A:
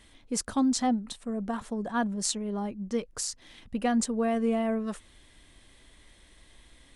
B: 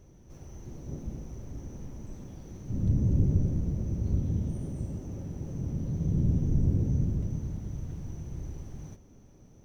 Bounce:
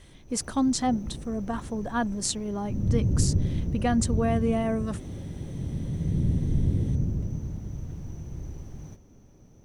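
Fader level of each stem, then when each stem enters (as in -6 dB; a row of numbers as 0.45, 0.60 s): +1.0, +1.0 dB; 0.00, 0.00 s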